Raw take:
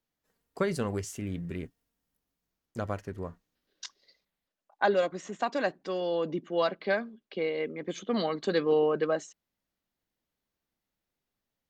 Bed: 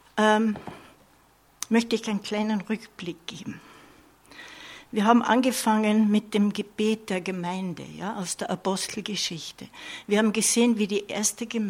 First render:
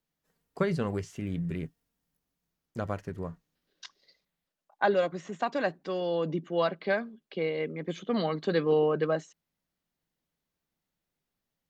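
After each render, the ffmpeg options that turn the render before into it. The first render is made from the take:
-filter_complex "[0:a]acrossover=split=4600[s0][s1];[s1]acompressor=threshold=0.00141:ratio=4:attack=1:release=60[s2];[s0][s2]amix=inputs=2:normalize=0,equalizer=f=160:t=o:w=0.26:g=8.5"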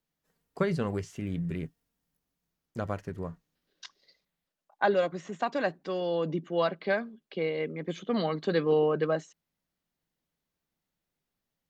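-af anull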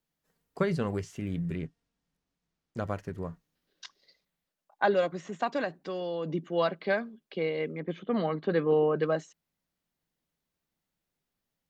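-filter_complex "[0:a]asettb=1/sr,asplit=3[s0][s1][s2];[s0]atrim=end=1.554[s3];[s1]atrim=start=1.55:end=2.77,asetpts=PTS-STARTPTS,afade=t=in:d=0.004:c=qsin,afade=t=out:st=1.216:d=0.004:c=qsin,lowpass=6400[s4];[s2]atrim=start=2.766[s5];[s3][s4]acrossfade=d=0.004:c1=hsin:c2=qsin[s6];[s6][s5]acrossfade=d=0.004:c1=qsin:c2=hsin,asettb=1/sr,asplit=3[s7][s8][s9];[s7]atrim=end=5.644[s10];[s8]atrim=start=5.64:end=6.32,asetpts=PTS-STARTPTS,afade=t=in:d=0.004:c=qsin,afade=t=out:st=0.676:d=0.004:c=qsin,acompressor=threshold=0.0251:ratio=2:attack=3.2:release=140:knee=1:detection=peak[s11];[s9]atrim=start=6.316[s12];[s10][s11]acrossfade=d=0.004:c1=hsin:c2=qsin[s13];[s13][s12]acrossfade=d=0.004:c1=qsin:c2=hsin,asettb=1/sr,asplit=3[s14][s15][s16];[s14]atrim=end=7.804[s17];[s15]atrim=start=7.8:end=8.96,asetpts=PTS-STARTPTS,afade=t=in:d=0.004:c=qsin,afade=t=out:st=1.156:d=0.004:c=qsin,lowpass=2400[s18];[s16]atrim=start=8.956[s19];[s17][s18]acrossfade=d=0.004:c1=hsin:c2=qsin[s20];[s20][s19]acrossfade=d=0.004:c1=qsin:c2=hsin"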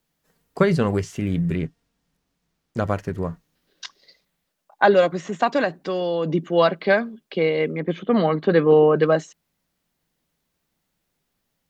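-af "volume=3.16,alimiter=limit=0.794:level=0:latency=1"

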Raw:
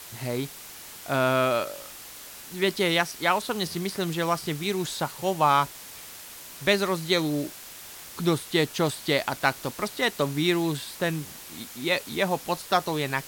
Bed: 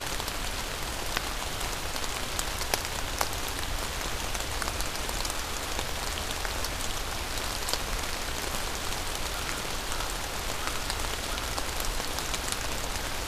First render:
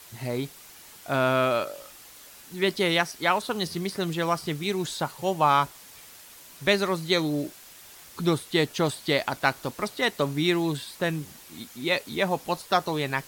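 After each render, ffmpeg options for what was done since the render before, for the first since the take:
-af "afftdn=nr=6:nf=-43"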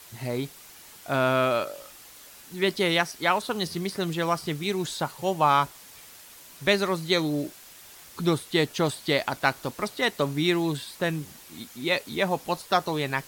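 -af anull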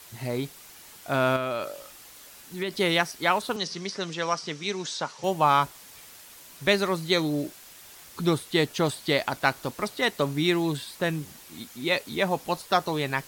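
-filter_complex "[0:a]asettb=1/sr,asplit=3[s0][s1][s2];[s0]atrim=end=1.364[s3];[s1]atrim=start=1.36:end=2.77,asetpts=PTS-STARTPTS,afade=t=in:d=0.004:c=qsin,afade=t=out:st=1.406:d=0.004:c=qsin,acompressor=threshold=0.0562:ratio=6:attack=3.2:release=140:knee=1:detection=peak[s4];[s2]atrim=start=2.766[s5];[s3][s4]acrossfade=d=0.004:c1=hsin:c2=qsin[s6];[s6][s5]acrossfade=d=0.004:c1=qsin:c2=hsin,asettb=1/sr,asplit=3[s7][s8][s9];[s7]atrim=end=3.564[s10];[s8]atrim=start=3.56:end=5.24,asetpts=PTS-STARTPTS,afade=t=in:d=0.004:c=qsin,afade=t=out:st=1.676:d=0.004:c=qsin,highpass=240,equalizer=f=340:t=q:w=4:g=-6,equalizer=f=750:t=q:w=4:g=-4,equalizer=f=5700:t=q:w=4:g=8,lowpass=f=7200:w=0.5412,lowpass=f=7200:w=1.3066[s11];[s9]atrim=start=5.236[s12];[s10][s11]acrossfade=d=0.004:c1=hsin:c2=qsin[s13];[s13][s12]acrossfade=d=0.004:c1=qsin:c2=hsin"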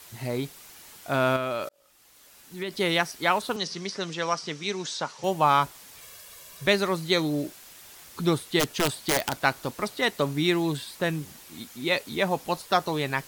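-filter_complex "[0:a]asettb=1/sr,asplit=3[s0][s1][s2];[s0]atrim=end=6.014[s3];[s1]atrim=start=6.01:end=6.66,asetpts=PTS-STARTPTS,afade=t=in:d=0.004:c=qsin,afade=t=out:st=0.646:d=0.004:c=qsin,aecho=1:1:1.8:0.65,atrim=end_sample=28665[s4];[s2]atrim=start=6.656[s5];[s3][s4]acrossfade=d=0.004:c1=hsin:c2=qsin[s6];[s6][s5]acrossfade=d=0.004:c1=qsin:c2=hsin,asplit=3[s7][s8][s9];[s7]afade=t=out:st=8.59:d=0.02[s10];[s8]aeval=exprs='(mod(6.68*val(0)+1,2)-1)/6.68':c=same,afade=t=in:st=8.59:d=0.02,afade=t=out:st=9.4:d=0.02[s11];[s9]afade=t=in:st=9.4:d=0.02[s12];[s10][s11][s12]amix=inputs=3:normalize=0,asplit=2[s13][s14];[s13]atrim=end=1.69,asetpts=PTS-STARTPTS,afade=t=out:st=1.686:d=0.004:c=hsin[s15];[s14]atrim=start=1.69,asetpts=PTS-STARTPTS,afade=t=in:d=1.72:c=qsin[s16];[s15][s16]concat=n=2:v=0:a=1"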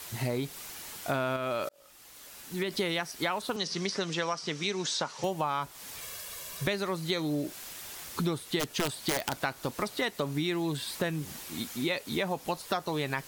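-filter_complex "[0:a]asplit=2[s0][s1];[s1]alimiter=limit=0.168:level=0:latency=1:release=37,volume=0.75[s2];[s0][s2]amix=inputs=2:normalize=0,acompressor=threshold=0.0398:ratio=6"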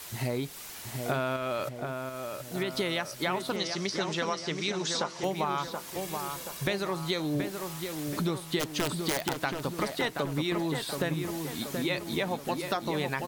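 -filter_complex "[0:a]asplit=2[s0][s1];[s1]adelay=728,lowpass=f=2100:p=1,volume=0.562,asplit=2[s2][s3];[s3]adelay=728,lowpass=f=2100:p=1,volume=0.54,asplit=2[s4][s5];[s5]adelay=728,lowpass=f=2100:p=1,volume=0.54,asplit=2[s6][s7];[s7]adelay=728,lowpass=f=2100:p=1,volume=0.54,asplit=2[s8][s9];[s9]adelay=728,lowpass=f=2100:p=1,volume=0.54,asplit=2[s10][s11];[s11]adelay=728,lowpass=f=2100:p=1,volume=0.54,asplit=2[s12][s13];[s13]adelay=728,lowpass=f=2100:p=1,volume=0.54[s14];[s0][s2][s4][s6][s8][s10][s12][s14]amix=inputs=8:normalize=0"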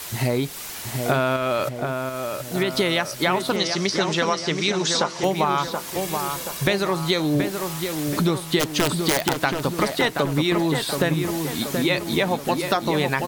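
-af "volume=2.82"

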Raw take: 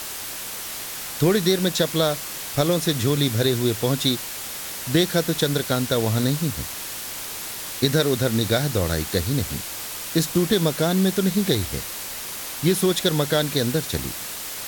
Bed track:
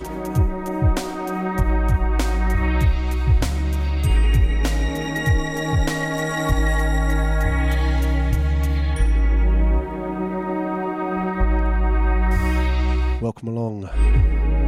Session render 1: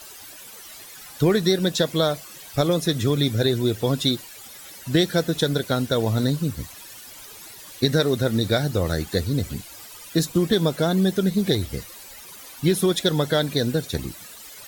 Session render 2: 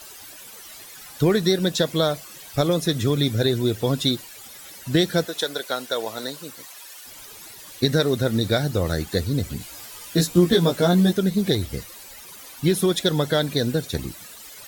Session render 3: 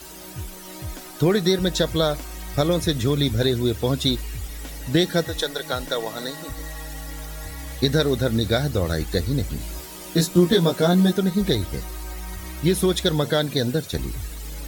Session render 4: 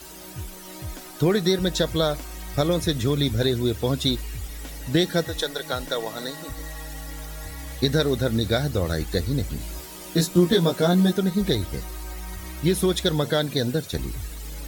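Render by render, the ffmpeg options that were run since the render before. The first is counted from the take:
-af "afftdn=nr=14:nf=-33"
-filter_complex "[0:a]asettb=1/sr,asplit=3[s0][s1][s2];[s0]atrim=end=5.254[s3];[s1]atrim=start=5.25:end=7.05,asetpts=PTS-STARTPTS,afade=t=in:d=0.004:c=qsin,afade=t=out:st=1.796:d=0.004:c=qsin,highpass=530[s4];[s2]atrim=start=7.046[s5];[s3][s4]acrossfade=d=0.004:c1=hsin:c2=qsin[s6];[s6][s5]acrossfade=d=0.004:c1=qsin:c2=hsin,asettb=1/sr,asplit=3[s7][s8][s9];[s7]atrim=end=9.594[s10];[s8]atrim=start=9.59:end=11.13,asetpts=PTS-STARTPTS,afade=t=in:d=0.004:c=qsin,afade=t=out:st=1.536:d=0.004:c=qsin,asplit=2[s11][s12];[s12]adelay=17,volume=0.794[s13];[s11][s13]amix=inputs=2:normalize=0,atrim=end_sample=67914[s14];[s9]atrim=start=11.126[s15];[s10][s14]acrossfade=d=0.004:c1=hsin:c2=qsin[s16];[s16][s15]acrossfade=d=0.004:c1=qsin:c2=hsin"
-filter_complex "[1:a]volume=0.158[s0];[0:a][s0]amix=inputs=2:normalize=0"
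-af "volume=0.841"

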